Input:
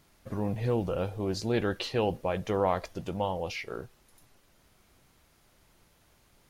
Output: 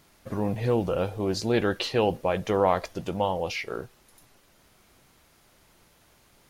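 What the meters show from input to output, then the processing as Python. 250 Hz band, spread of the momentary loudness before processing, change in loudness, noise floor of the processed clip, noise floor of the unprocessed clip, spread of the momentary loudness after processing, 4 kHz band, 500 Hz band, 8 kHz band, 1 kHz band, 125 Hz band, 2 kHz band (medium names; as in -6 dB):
+4.0 dB, 10 LU, +4.0 dB, -61 dBFS, -65 dBFS, 11 LU, +5.0 dB, +4.5 dB, +5.0 dB, +5.0 dB, +2.0 dB, +5.0 dB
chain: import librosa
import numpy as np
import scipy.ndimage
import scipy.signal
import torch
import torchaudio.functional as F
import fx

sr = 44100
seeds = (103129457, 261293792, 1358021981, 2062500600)

y = fx.low_shelf(x, sr, hz=130.0, db=-5.5)
y = F.gain(torch.from_numpy(y), 5.0).numpy()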